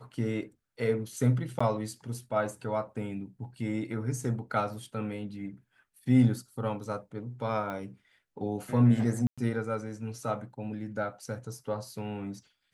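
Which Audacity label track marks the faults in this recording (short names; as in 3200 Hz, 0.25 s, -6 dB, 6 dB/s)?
1.590000	1.600000	gap 15 ms
7.700000	7.700000	pop -25 dBFS
9.270000	9.380000	gap 0.106 s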